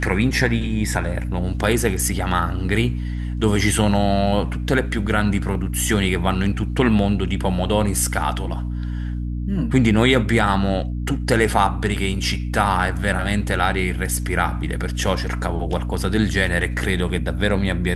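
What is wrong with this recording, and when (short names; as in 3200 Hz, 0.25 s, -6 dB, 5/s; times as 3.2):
hum 60 Hz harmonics 5 -25 dBFS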